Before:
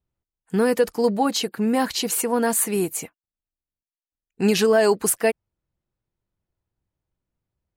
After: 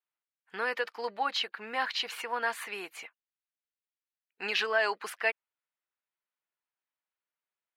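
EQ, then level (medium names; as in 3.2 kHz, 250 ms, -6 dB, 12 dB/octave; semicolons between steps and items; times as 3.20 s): high-pass 1.5 kHz 12 dB/octave; distance through air 340 m; +4.5 dB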